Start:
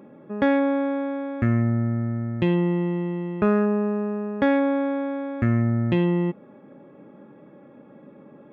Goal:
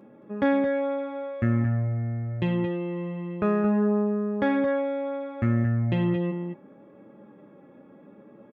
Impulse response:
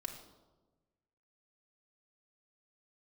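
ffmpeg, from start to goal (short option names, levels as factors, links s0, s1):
-filter_complex "[0:a]asplit=2[s0][s1];[s1]adelay=221.6,volume=0.447,highshelf=f=4000:g=-4.99[s2];[s0][s2]amix=inputs=2:normalize=0,flanger=delay=9:depth=2.3:regen=-37:speed=0.71:shape=sinusoidal"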